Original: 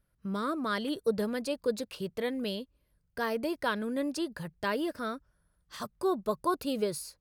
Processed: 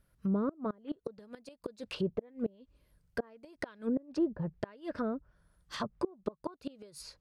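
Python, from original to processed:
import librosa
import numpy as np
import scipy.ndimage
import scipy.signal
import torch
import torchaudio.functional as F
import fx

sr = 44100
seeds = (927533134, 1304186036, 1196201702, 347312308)

y = fx.gate_flip(x, sr, shuts_db=-24.0, range_db=-28)
y = fx.env_lowpass_down(y, sr, base_hz=580.0, full_db=-33.5)
y = F.gain(torch.from_numpy(y), 4.5).numpy()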